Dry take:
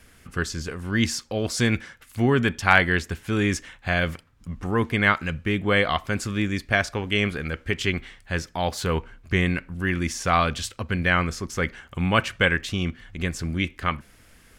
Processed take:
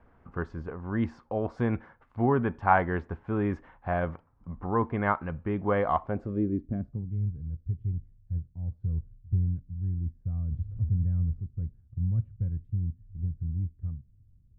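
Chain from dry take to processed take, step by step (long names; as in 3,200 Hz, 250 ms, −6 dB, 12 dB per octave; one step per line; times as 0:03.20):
0:10.51–0:11.40: converter with a step at zero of −25 dBFS
low-pass filter sweep 930 Hz → 110 Hz, 0:06.00–0:07.20
level −5.5 dB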